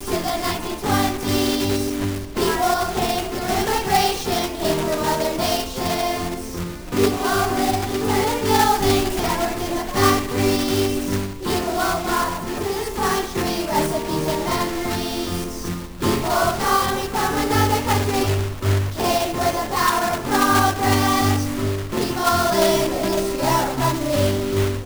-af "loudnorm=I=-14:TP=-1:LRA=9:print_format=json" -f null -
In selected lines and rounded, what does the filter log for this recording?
"input_i" : "-20.8",
"input_tp" : "-2.3",
"input_lra" : "3.1",
"input_thresh" : "-30.8",